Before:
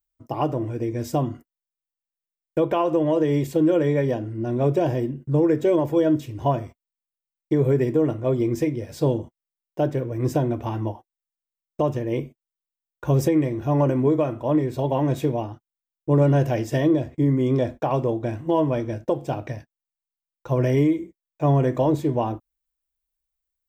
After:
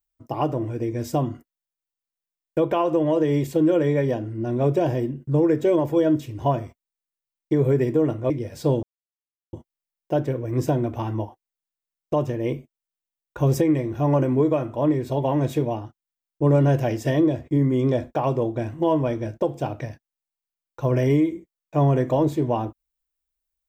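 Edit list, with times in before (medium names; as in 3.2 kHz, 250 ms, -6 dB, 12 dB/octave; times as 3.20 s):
8.30–8.67 s: delete
9.20 s: insert silence 0.70 s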